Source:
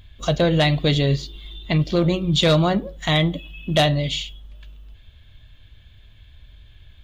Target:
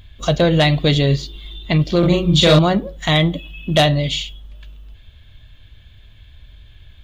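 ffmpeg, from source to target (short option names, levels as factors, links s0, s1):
-filter_complex "[0:a]asettb=1/sr,asplit=3[s0][s1][s2];[s0]atrim=end=1.994[s3];[s1]atrim=start=1.99:end=2.59,asetpts=PTS-STARTPTS,afade=t=in:d=0.004:c=qsin,afade=t=out:st=0.596:d=0.004:c=qsin,asplit=2[s4][s5];[s5]adelay=40,volume=0.75[s6];[s4][s6]amix=inputs=2:normalize=0,atrim=end_sample=26460[s7];[s2]atrim=start=2.586[s8];[s3][s7]acrossfade=d=0.004:c1=hsin:c2=qsin[s9];[s9][s8]acrossfade=d=0.004:c1=qsin:c2=hsin,volume=1.5"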